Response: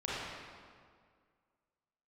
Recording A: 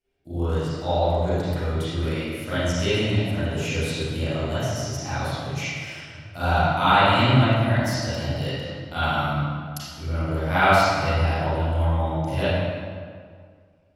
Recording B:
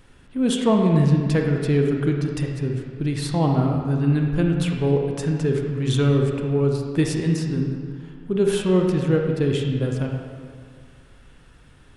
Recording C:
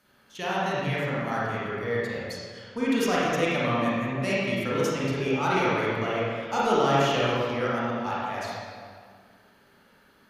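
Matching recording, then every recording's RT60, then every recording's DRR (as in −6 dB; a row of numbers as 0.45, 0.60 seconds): C; 2.0, 2.0, 2.0 seconds; −15.5, 1.5, −8.5 decibels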